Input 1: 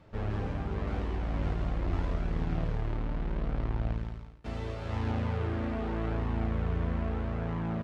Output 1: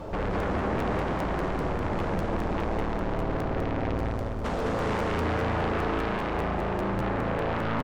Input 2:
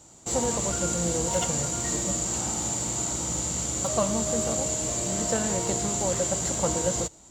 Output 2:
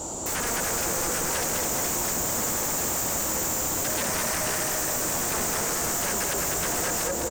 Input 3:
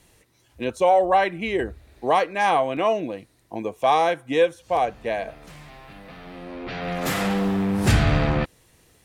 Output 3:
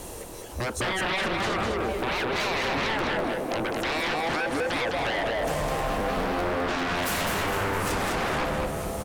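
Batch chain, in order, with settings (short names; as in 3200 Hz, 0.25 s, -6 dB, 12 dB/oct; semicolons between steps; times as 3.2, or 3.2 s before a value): graphic EQ 125/500/1000/2000/4000 Hz -8/+4/+3/-9/-5 dB; limiter -15.5 dBFS; compressor 3:1, threshold -41 dBFS; echo with dull and thin repeats by turns 0.231 s, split 1700 Hz, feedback 72%, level -9.5 dB; sine folder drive 18 dB, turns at -23.5 dBFS; feedback echo 0.206 s, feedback 36%, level -4 dB; crackling interface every 0.20 s, samples 512, repeat, from 0.38; gain -2 dB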